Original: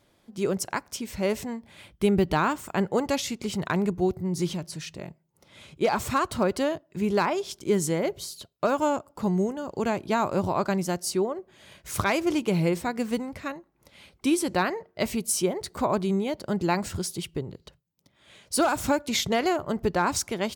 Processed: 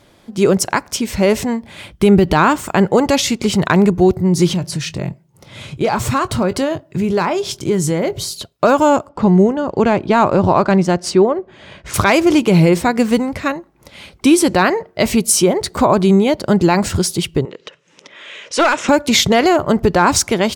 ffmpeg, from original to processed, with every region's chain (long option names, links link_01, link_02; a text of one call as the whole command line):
ffmpeg -i in.wav -filter_complex "[0:a]asettb=1/sr,asplit=3[link_01][link_02][link_03];[link_01]atrim=end=4.534[link_04];[link_02]atrim=start=4.53:end=8.33,asetpts=PTS-STARTPTS,afade=type=in:duration=0.004:curve=qsin,afade=type=out:start_time=3.796:duration=0.004:curve=qsin,equalizer=frequency=120:width_type=o:width=0.74:gain=10,acompressor=threshold=-33dB:ratio=2:attack=3.2:release=140:knee=1:detection=peak,asplit=2[link_05][link_06];[link_06]adelay=22,volume=-13.5dB[link_07];[link_05][link_07]amix=inputs=2:normalize=0,atrim=end_sample=167580[link_08];[link_03]atrim=start=8.326[link_09];[link_04][link_08]acrossfade=duration=0.004:curve1=hsin:curve2=qsin[link_10];[link_10][link_09]acrossfade=duration=0.004:curve1=qsin:curve2=hsin,asettb=1/sr,asplit=3[link_11][link_12][link_13];[link_11]atrim=end=9.074[link_14];[link_12]atrim=start=9.07:end=11.94,asetpts=PTS-STARTPTS,afade=type=in:duration=0.004:curve=qsin,afade=type=out:start_time=2.866:duration=0.004:curve=qsin,equalizer=frequency=8300:width=6.4:gain=3,adynamicsmooth=sensitivity=2:basefreq=4000[link_15];[link_13]atrim=start=11.936[link_16];[link_14][link_15]acrossfade=duration=0.004:curve1=hsin:curve2=qsin[link_17];[link_17][link_16]acrossfade=duration=0.004:curve1=qsin:curve2=hsin,asettb=1/sr,asplit=3[link_18][link_19][link_20];[link_18]atrim=end=17.454[link_21];[link_19]atrim=start=17.45:end=18.89,asetpts=PTS-STARTPTS,afade=type=in:duration=0.004:curve=qsin,afade=type=out:start_time=1.436:duration=0.004:curve=qsin,highpass=470,equalizer=frequency=470:width_type=q:width=4:gain=4,equalizer=frequency=760:width_type=q:width=4:gain=-9,equalizer=frequency=1900:width_type=q:width=4:gain=4,equalizer=frequency=2700:width_type=q:width=4:gain=5,equalizer=frequency=4500:width_type=q:width=4:gain=-10,lowpass=frequency=6500:width=0.5412,lowpass=frequency=6500:width=1.3066,acompressor=mode=upward:threshold=-41dB:ratio=2.5:attack=3.2:release=140:knee=2.83:detection=peak,aeval=exprs='clip(val(0),-1,0.0631)':channel_layout=same[link_22];[link_20]atrim=start=18.886[link_23];[link_21][link_22]acrossfade=duration=0.004:curve1=hsin:curve2=qsin[link_24];[link_24][link_23]acrossfade=duration=0.004:curve1=qsin:curve2=hsin,highshelf=frequency=12000:gain=-7,acontrast=38,alimiter=level_in=10dB:limit=-1dB:release=50:level=0:latency=1,volume=-1dB" out.wav